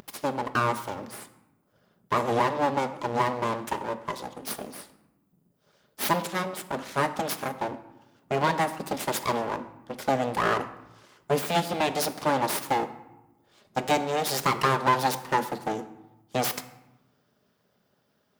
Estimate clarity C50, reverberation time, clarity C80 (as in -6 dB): 13.5 dB, 0.95 s, 15.0 dB